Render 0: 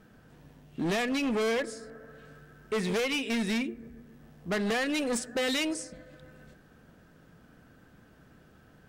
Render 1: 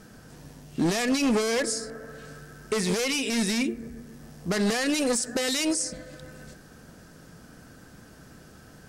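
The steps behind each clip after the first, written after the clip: band shelf 7400 Hz +10 dB; limiter -26 dBFS, peak gain reduction 12 dB; gain +7.5 dB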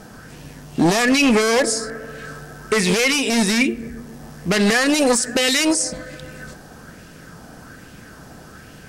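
LFO bell 1.2 Hz 730–2800 Hz +8 dB; gain +7.5 dB

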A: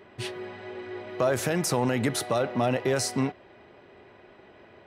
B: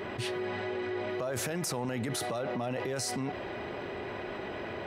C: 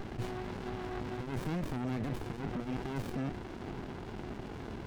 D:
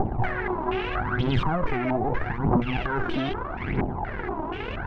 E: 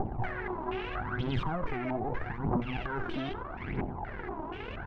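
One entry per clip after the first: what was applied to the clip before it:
limiter -27 dBFS, peak gain reduction 12 dB; fast leveller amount 70%
running maximum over 65 samples
phaser 0.79 Hz, delay 3.3 ms, feedback 68%; stepped low-pass 4.2 Hz 810–3300 Hz; gain +8 dB
echo 89 ms -21.5 dB; gain -8 dB

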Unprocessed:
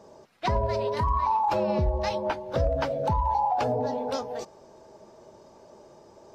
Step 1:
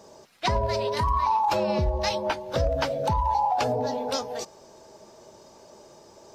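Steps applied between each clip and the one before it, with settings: high shelf 2400 Hz +10.5 dB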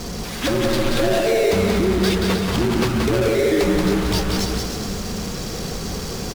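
power-law curve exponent 0.35; frequency shift -430 Hz; bouncing-ball echo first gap 0.18 s, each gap 0.75×, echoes 5; gain -2.5 dB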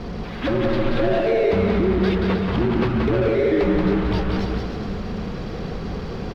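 air absorption 350 m

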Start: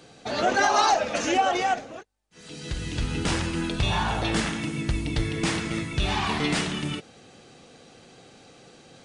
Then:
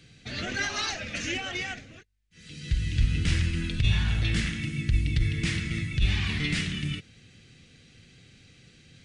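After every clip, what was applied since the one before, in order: EQ curve 100 Hz 0 dB, 890 Hz -29 dB, 2000 Hz -6 dB, 9900 Hz -14 dB; negative-ratio compressor -25 dBFS, ratio -0.5; gain +6 dB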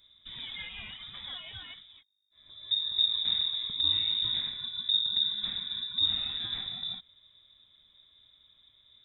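inverted band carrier 3700 Hz; band shelf 750 Hz -14 dB 2.9 oct; gain -6 dB

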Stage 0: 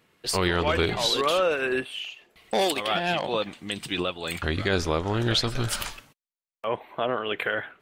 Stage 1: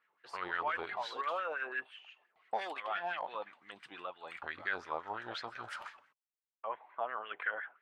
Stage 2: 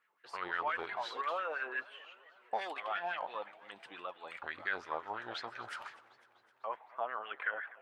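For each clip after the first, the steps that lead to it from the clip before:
wah 5.8 Hz 790–1800 Hz, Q 3.9; gain -2.5 dB
low shelf 150 Hz -4 dB; warbling echo 0.252 s, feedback 64%, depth 180 cents, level -20.5 dB

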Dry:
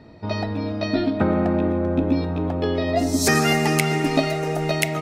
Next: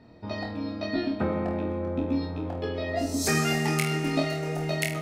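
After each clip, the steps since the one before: flutter echo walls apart 4.3 m, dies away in 0.37 s; gain -8 dB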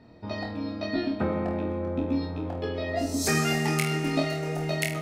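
nothing audible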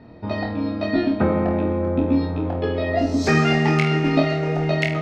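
air absorption 200 m; gain +8.5 dB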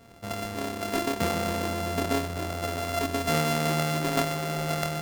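sample sorter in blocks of 64 samples; gain -8 dB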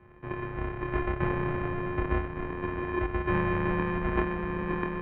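mistuned SSB -330 Hz 170–2600 Hz

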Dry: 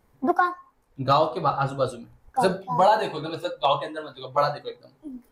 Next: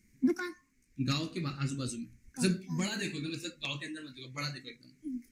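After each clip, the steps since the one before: EQ curve 140 Hz 0 dB, 210 Hz +8 dB, 340 Hz 0 dB, 510 Hz -19 dB, 810 Hz -29 dB, 1300 Hz -14 dB, 2200 Hz +11 dB, 3300 Hz -4 dB, 6300 Hz +14 dB, 12000 Hz +2 dB; gain -4.5 dB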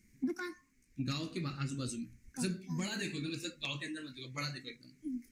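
compressor 2.5:1, threshold -35 dBFS, peak gain reduction 9 dB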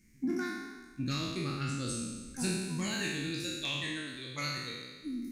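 spectral trails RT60 1.36 s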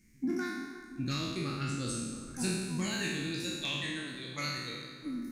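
analogue delay 0.339 s, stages 4096, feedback 68%, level -14 dB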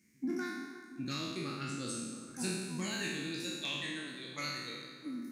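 HPF 170 Hz 12 dB/oct; gain -2.5 dB

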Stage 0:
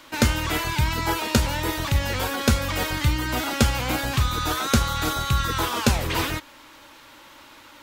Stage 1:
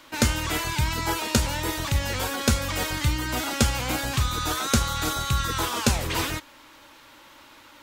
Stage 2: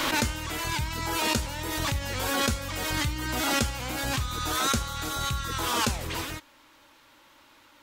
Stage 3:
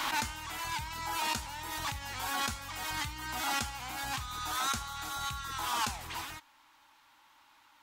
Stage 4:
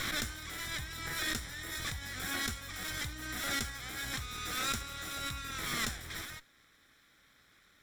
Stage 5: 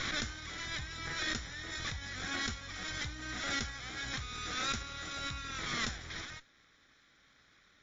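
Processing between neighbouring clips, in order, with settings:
dynamic EQ 7800 Hz, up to +5 dB, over -40 dBFS, Q 0.84; gain -2.5 dB
backwards sustainer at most 22 dB/s; gain -7 dB
resonant low shelf 660 Hz -6 dB, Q 3; gain -7 dB
minimum comb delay 0.55 ms
MP3 40 kbps 16000 Hz

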